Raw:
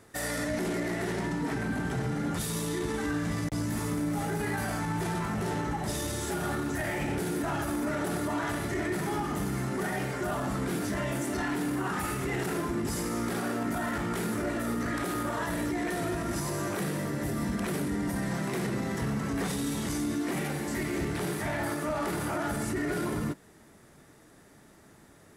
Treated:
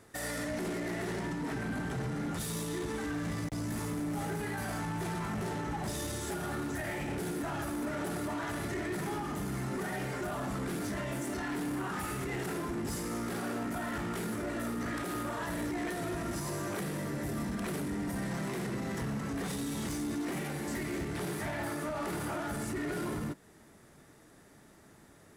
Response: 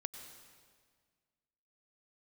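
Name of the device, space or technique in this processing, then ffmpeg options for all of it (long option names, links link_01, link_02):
limiter into clipper: -af "alimiter=limit=-23.5dB:level=0:latency=1:release=249,asoftclip=type=hard:threshold=-29dB,volume=-2dB"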